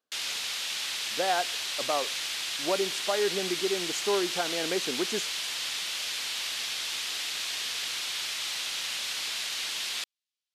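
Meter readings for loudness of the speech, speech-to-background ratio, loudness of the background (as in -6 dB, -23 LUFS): -32.0 LUFS, -1.5 dB, -30.5 LUFS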